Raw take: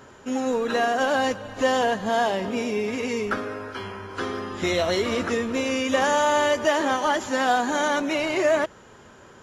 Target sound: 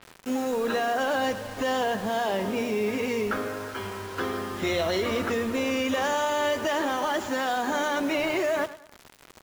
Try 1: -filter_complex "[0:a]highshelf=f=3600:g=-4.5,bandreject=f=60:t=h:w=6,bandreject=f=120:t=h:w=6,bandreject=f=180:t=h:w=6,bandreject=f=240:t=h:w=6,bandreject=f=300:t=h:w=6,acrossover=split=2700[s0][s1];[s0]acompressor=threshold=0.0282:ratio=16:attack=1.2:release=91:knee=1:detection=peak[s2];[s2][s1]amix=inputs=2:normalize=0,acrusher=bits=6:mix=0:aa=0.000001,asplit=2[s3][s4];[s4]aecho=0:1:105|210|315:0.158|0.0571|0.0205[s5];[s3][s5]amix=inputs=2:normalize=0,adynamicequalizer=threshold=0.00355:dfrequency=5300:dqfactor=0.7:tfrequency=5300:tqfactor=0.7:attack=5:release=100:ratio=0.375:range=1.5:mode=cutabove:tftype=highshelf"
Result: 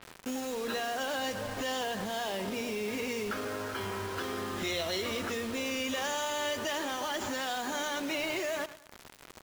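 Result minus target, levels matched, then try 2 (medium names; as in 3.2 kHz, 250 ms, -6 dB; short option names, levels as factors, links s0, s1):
compression: peak gain reduction +9 dB
-filter_complex "[0:a]highshelf=f=3600:g=-4.5,bandreject=f=60:t=h:w=6,bandreject=f=120:t=h:w=6,bandreject=f=180:t=h:w=6,bandreject=f=240:t=h:w=6,bandreject=f=300:t=h:w=6,acrossover=split=2700[s0][s1];[s0]acompressor=threshold=0.0841:ratio=16:attack=1.2:release=91:knee=1:detection=peak[s2];[s2][s1]amix=inputs=2:normalize=0,acrusher=bits=6:mix=0:aa=0.000001,asplit=2[s3][s4];[s4]aecho=0:1:105|210|315:0.158|0.0571|0.0205[s5];[s3][s5]amix=inputs=2:normalize=0,adynamicequalizer=threshold=0.00355:dfrequency=5300:dqfactor=0.7:tfrequency=5300:tqfactor=0.7:attack=5:release=100:ratio=0.375:range=1.5:mode=cutabove:tftype=highshelf"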